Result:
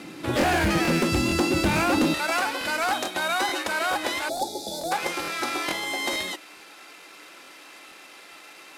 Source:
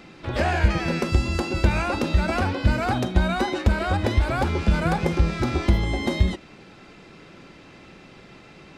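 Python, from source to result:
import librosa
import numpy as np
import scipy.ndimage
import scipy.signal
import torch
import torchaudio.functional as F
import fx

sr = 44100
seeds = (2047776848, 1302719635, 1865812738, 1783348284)

y = fx.cvsd(x, sr, bps=64000)
y = fx.highpass(y, sr, hz=fx.steps((0.0, 130.0), (2.14, 750.0)), slope=12)
y = np.clip(10.0 ** (22.5 / 20.0) * y, -1.0, 1.0) / 10.0 ** (22.5 / 20.0)
y = fx.peak_eq(y, sr, hz=300.0, db=8.5, octaves=0.29)
y = fx.spec_box(y, sr, start_s=4.29, length_s=0.63, low_hz=900.0, high_hz=3400.0, gain_db=-29)
y = fx.high_shelf(y, sr, hz=5300.0, db=5.5)
y = fx.buffer_crackle(y, sr, first_s=0.39, period_s=0.44, block=1024, kind='repeat')
y = F.gain(torch.from_numpy(y), 3.5).numpy()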